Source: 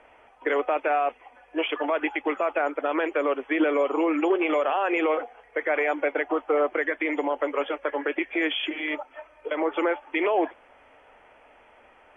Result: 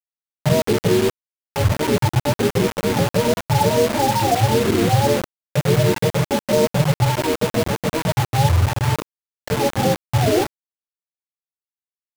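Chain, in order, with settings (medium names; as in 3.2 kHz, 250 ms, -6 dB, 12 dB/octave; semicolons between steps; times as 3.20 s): spectrum inverted on a logarithmic axis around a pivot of 520 Hz; 3.95–4.37 s: hum notches 60/120/180/240/300/360/420/480/540 Hz; bit crusher 5-bit; trim +7 dB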